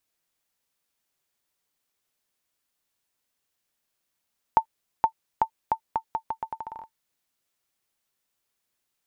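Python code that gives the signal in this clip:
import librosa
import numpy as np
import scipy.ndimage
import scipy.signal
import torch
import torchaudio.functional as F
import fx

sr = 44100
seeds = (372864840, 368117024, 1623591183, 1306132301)

y = fx.bouncing_ball(sr, first_gap_s=0.47, ratio=0.8, hz=894.0, decay_ms=84.0, level_db=-7.0)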